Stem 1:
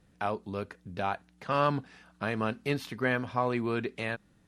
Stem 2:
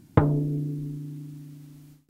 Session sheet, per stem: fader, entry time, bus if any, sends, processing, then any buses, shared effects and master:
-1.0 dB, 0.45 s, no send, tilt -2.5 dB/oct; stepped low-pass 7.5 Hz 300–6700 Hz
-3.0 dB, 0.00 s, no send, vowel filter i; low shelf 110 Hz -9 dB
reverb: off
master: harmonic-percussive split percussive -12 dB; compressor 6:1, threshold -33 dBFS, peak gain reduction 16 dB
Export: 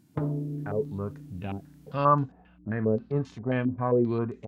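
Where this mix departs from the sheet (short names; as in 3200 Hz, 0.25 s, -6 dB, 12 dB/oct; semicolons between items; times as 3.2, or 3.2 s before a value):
stem 2: missing vowel filter i; master: missing compressor 6:1, threshold -33 dBFS, peak gain reduction 16 dB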